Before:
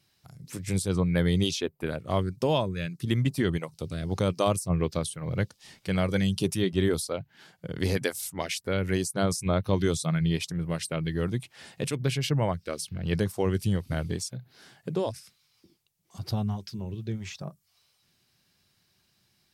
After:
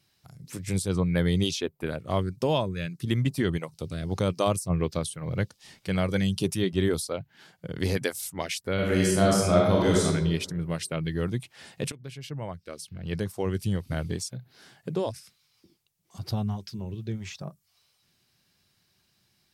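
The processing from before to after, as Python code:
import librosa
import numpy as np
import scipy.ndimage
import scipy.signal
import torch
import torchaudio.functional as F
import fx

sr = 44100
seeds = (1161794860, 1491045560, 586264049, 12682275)

y = fx.reverb_throw(x, sr, start_s=8.74, length_s=1.3, rt60_s=1.2, drr_db=-4.0)
y = fx.edit(y, sr, fx.fade_in_from(start_s=11.92, length_s=2.13, floor_db=-17.0), tone=tone)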